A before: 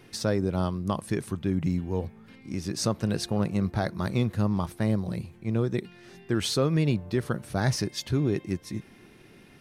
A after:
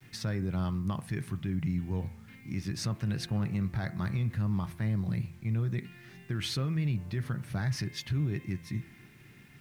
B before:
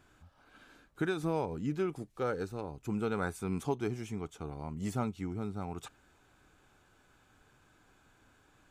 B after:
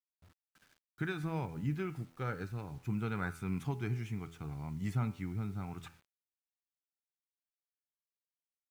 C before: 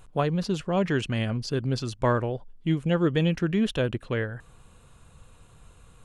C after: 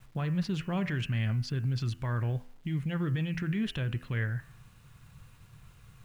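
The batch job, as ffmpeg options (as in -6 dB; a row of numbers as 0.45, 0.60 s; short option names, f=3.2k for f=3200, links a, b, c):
-af "equalizer=f=125:t=o:w=1:g=11,equalizer=f=500:t=o:w=1:g=-6,equalizer=f=2k:t=o:w=1:g=8,equalizer=f=8k:t=o:w=1:g=-5,agate=range=-33dB:threshold=-47dB:ratio=3:detection=peak,alimiter=limit=-18.5dB:level=0:latency=1:release=60,bandreject=f=83.27:t=h:w=4,bandreject=f=166.54:t=h:w=4,bandreject=f=249.81:t=h:w=4,bandreject=f=333.08:t=h:w=4,bandreject=f=416.35:t=h:w=4,bandreject=f=499.62:t=h:w=4,bandreject=f=582.89:t=h:w=4,bandreject=f=666.16:t=h:w=4,bandreject=f=749.43:t=h:w=4,bandreject=f=832.7:t=h:w=4,bandreject=f=915.97:t=h:w=4,bandreject=f=999.24:t=h:w=4,bandreject=f=1.08251k:t=h:w=4,bandreject=f=1.16578k:t=h:w=4,bandreject=f=1.24905k:t=h:w=4,bandreject=f=1.33232k:t=h:w=4,bandreject=f=1.41559k:t=h:w=4,bandreject=f=1.49886k:t=h:w=4,bandreject=f=1.58213k:t=h:w=4,bandreject=f=1.6654k:t=h:w=4,bandreject=f=1.74867k:t=h:w=4,bandreject=f=1.83194k:t=h:w=4,bandreject=f=1.91521k:t=h:w=4,bandreject=f=1.99848k:t=h:w=4,bandreject=f=2.08175k:t=h:w=4,bandreject=f=2.16502k:t=h:w=4,bandreject=f=2.24829k:t=h:w=4,bandreject=f=2.33156k:t=h:w=4,bandreject=f=2.41483k:t=h:w=4,bandreject=f=2.4981k:t=h:w=4,bandreject=f=2.58137k:t=h:w=4,bandreject=f=2.66464k:t=h:w=4,bandreject=f=2.74791k:t=h:w=4,bandreject=f=2.83118k:t=h:w=4,bandreject=f=2.91445k:t=h:w=4,bandreject=f=2.99772k:t=h:w=4,acrusher=bits=9:mix=0:aa=0.000001,volume=-5dB"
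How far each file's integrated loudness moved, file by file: -5.0, -2.0, -5.5 LU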